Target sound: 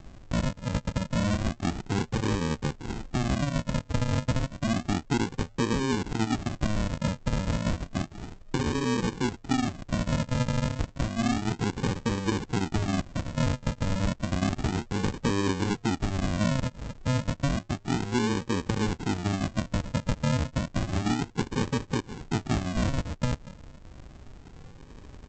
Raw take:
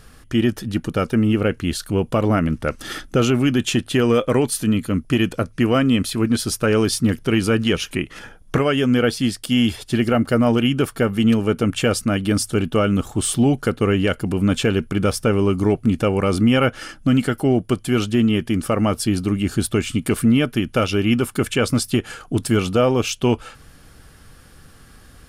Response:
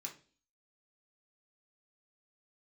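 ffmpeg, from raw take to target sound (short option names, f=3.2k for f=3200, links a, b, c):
-af "acompressor=threshold=-27dB:ratio=3,aresample=16000,acrusher=samples=33:mix=1:aa=0.000001:lfo=1:lforange=19.8:lforate=0.31,aresample=44100"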